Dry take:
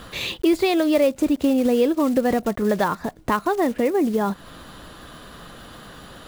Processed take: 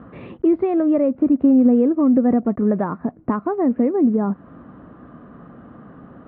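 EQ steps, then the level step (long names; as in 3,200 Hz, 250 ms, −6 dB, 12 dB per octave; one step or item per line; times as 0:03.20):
loudspeaker in its box 210–2,200 Hz, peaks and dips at 250 Hz +5 dB, 700 Hz +3 dB, 1,200 Hz +6 dB
spectral tilt −4 dB per octave
low-shelf EQ 280 Hz +8 dB
−8.0 dB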